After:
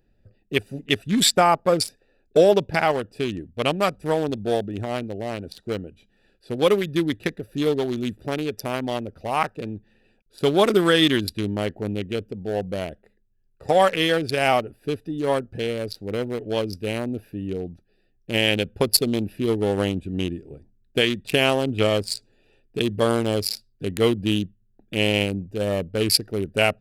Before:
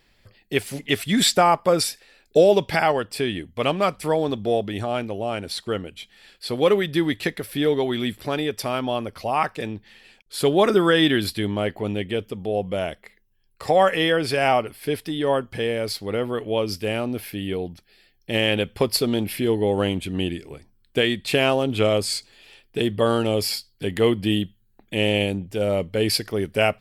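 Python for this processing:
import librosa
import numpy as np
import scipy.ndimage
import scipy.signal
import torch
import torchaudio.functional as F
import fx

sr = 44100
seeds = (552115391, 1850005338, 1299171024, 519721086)

y = fx.wiener(x, sr, points=41)
y = fx.high_shelf(y, sr, hz=4300.0, db=fx.steps((0.0, 10.0), (1.06, 4.0), (2.89, 11.0)))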